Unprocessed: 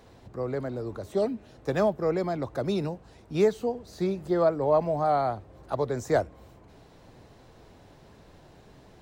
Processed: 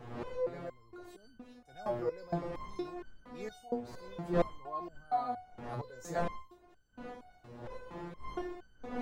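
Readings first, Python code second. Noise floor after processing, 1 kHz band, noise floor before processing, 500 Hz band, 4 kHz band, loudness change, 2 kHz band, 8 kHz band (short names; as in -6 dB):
-63 dBFS, -7.5 dB, -54 dBFS, -12.0 dB, -10.5 dB, -11.5 dB, -8.0 dB, n/a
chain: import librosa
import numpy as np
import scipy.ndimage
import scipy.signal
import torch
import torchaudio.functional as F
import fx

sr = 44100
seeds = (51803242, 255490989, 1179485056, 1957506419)

y = fx.dmg_wind(x, sr, seeds[0], corner_hz=590.0, level_db=-31.0)
y = fx.transient(y, sr, attack_db=-6, sustain_db=3)
y = fx.resonator_held(y, sr, hz=4.3, low_hz=120.0, high_hz=1500.0)
y = y * 10.0 ** (3.0 / 20.0)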